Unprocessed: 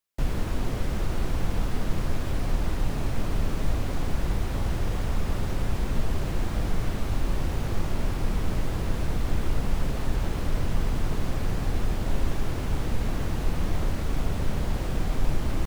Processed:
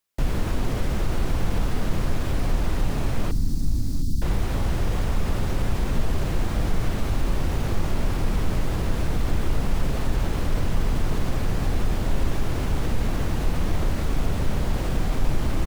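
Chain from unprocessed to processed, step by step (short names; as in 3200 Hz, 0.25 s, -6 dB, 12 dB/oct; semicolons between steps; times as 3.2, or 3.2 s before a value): 3.31–4.22 elliptic band-stop 280–4500 Hz, stop band 40 dB; in parallel at -2.5 dB: limiter -23 dBFS, peak gain reduction 11 dB; on the sum: echo 0.709 s -19.5 dB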